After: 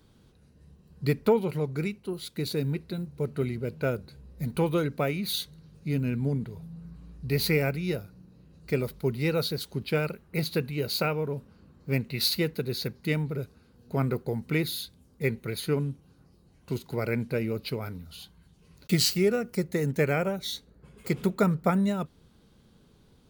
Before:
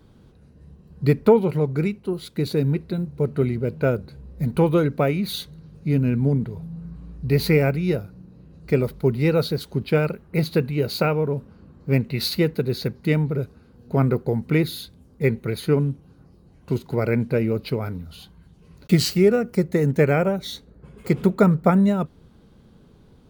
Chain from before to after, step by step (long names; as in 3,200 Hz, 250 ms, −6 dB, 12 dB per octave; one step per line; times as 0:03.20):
high-shelf EQ 2,100 Hz +9.5 dB
level −8 dB